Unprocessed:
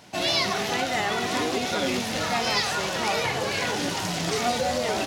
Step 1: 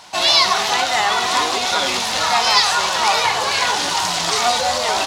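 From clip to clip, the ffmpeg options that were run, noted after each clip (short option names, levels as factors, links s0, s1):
-af "equalizer=f=125:t=o:w=1:g=-8,equalizer=f=250:t=o:w=1:g=-7,equalizer=f=500:t=o:w=1:g=-3,equalizer=f=1000:t=o:w=1:g=11,equalizer=f=4000:t=o:w=1:g=7,equalizer=f=8000:t=o:w=1:g=6,volume=1.5"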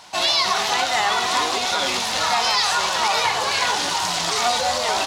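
-af "alimiter=level_in=1.88:limit=0.891:release=50:level=0:latency=1,volume=0.398"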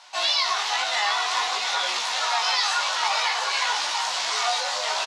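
-filter_complex "[0:a]flanger=delay=16.5:depth=3.1:speed=0.53,highpass=790,lowpass=7600,asplit=2[s0][s1];[s1]aecho=0:1:691:0.335[s2];[s0][s2]amix=inputs=2:normalize=0"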